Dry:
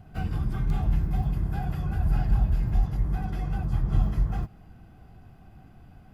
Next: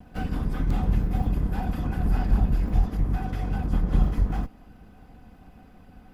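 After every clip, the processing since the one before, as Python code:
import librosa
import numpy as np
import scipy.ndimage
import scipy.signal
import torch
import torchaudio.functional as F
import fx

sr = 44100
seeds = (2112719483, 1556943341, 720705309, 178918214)

y = fx.lower_of_two(x, sr, delay_ms=4.0)
y = F.gain(torch.from_numpy(y), 3.0).numpy()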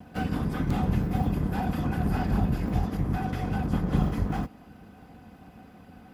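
y = scipy.signal.sosfilt(scipy.signal.butter(2, 92.0, 'highpass', fs=sr, output='sos'), x)
y = F.gain(torch.from_numpy(y), 3.0).numpy()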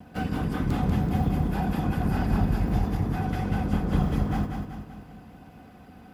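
y = fx.echo_feedback(x, sr, ms=191, feedback_pct=49, wet_db=-5.5)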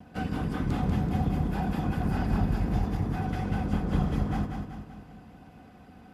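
y = scipy.signal.sosfilt(scipy.signal.butter(2, 11000.0, 'lowpass', fs=sr, output='sos'), x)
y = F.gain(torch.from_numpy(y), -2.5).numpy()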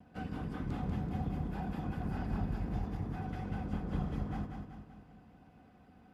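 y = fx.high_shelf(x, sr, hz=4600.0, db=-6.0)
y = F.gain(torch.from_numpy(y), -9.0).numpy()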